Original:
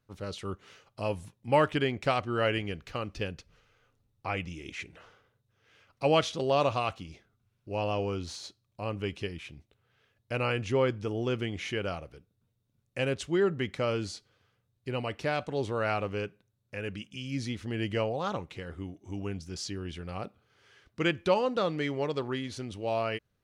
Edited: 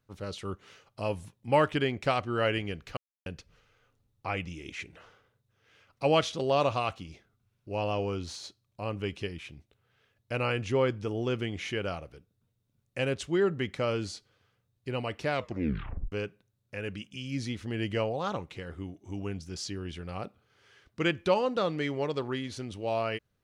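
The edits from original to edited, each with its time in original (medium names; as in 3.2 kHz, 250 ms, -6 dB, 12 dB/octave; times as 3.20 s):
2.97–3.26 s: mute
15.31 s: tape stop 0.81 s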